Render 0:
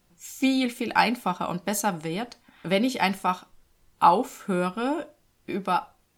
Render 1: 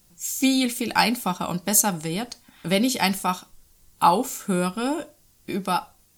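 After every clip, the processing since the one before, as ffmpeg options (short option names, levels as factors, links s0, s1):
-af "bass=f=250:g=5,treble=f=4000:g=13"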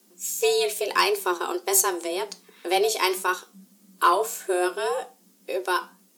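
-af "flanger=delay=8.2:depth=4.3:regen=77:speed=1.8:shape=triangular,asoftclip=type=tanh:threshold=0.237,afreqshift=180,volume=1.58"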